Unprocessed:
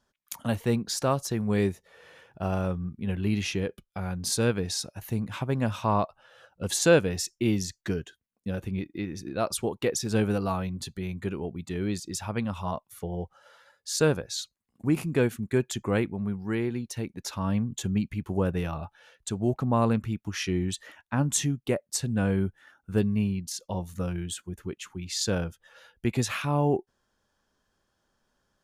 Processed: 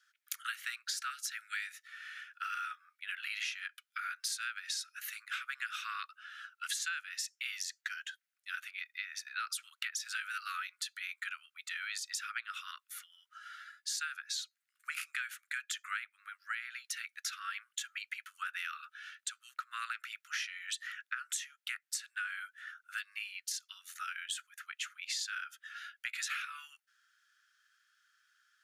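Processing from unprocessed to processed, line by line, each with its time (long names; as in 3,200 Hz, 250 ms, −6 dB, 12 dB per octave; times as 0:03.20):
0:01.10–0:01.71: Chebyshev high-pass filter 1,300 Hz, order 8
whole clip: Butterworth high-pass 1,300 Hz 96 dB per octave; high-shelf EQ 2,400 Hz −10.5 dB; downward compressor 10 to 1, threshold −47 dBFS; level +12 dB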